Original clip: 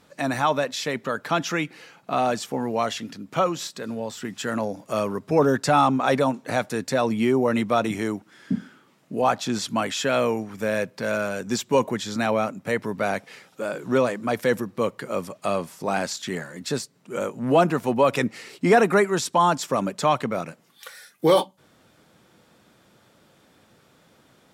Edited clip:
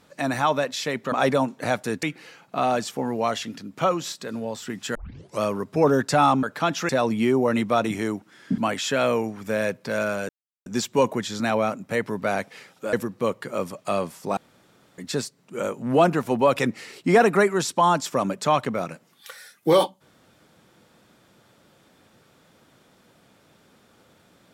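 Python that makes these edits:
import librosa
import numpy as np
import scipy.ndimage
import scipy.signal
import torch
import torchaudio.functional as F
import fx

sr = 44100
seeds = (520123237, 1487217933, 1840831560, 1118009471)

y = fx.edit(x, sr, fx.swap(start_s=1.12, length_s=0.46, other_s=5.98, other_length_s=0.91),
    fx.tape_start(start_s=4.5, length_s=0.46),
    fx.cut(start_s=8.58, length_s=1.13),
    fx.insert_silence(at_s=11.42, length_s=0.37),
    fx.cut(start_s=13.69, length_s=0.81),
    fx.room_tone_fill(start_s=15.94, length_s=0.61), tone=tone)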